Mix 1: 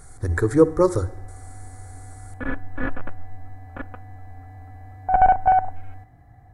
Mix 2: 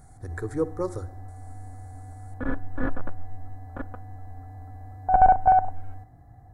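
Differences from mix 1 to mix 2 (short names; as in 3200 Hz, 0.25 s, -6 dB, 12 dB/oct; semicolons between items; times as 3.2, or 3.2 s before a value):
speech -11.5 dB; background: add bell 2500 Hz -13 dB 1 oct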